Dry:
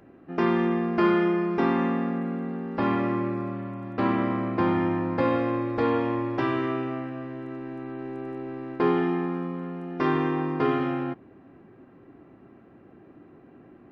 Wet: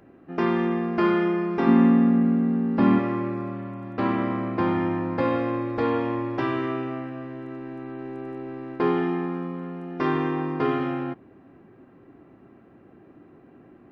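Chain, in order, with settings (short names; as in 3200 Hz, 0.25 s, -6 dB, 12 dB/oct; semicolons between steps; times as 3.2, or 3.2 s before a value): 1.67–2.99 bell 220 Hz +11.5 dB 0.84 oct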